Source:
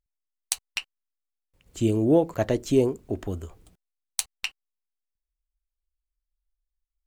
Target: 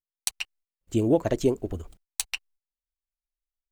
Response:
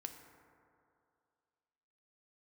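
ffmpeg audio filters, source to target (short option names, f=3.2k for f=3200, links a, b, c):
-af "asubboost=boost=3:cutoff=59,atempo=1.9,agate=range=-20dB:threshold=-57dB:ratio=16:detection=peak"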